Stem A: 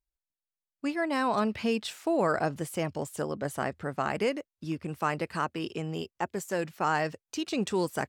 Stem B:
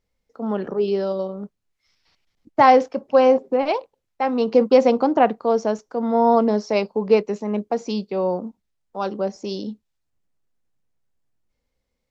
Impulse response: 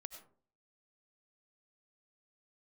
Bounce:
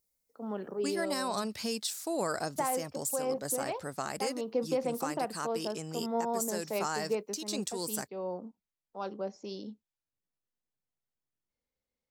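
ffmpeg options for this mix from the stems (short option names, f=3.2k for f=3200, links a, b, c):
-filter_complex "[0:a]aexciter=amount=7.3:drive=2.8:freq=4k,volume=-4dB[a];[1:a]volume=-12dB[b];[a][b]amix=inputs=2:normalize=0,lowshelf=f=79:g=-9.5,alimiter=limit=-21dB:level=0:latency=1:release=482"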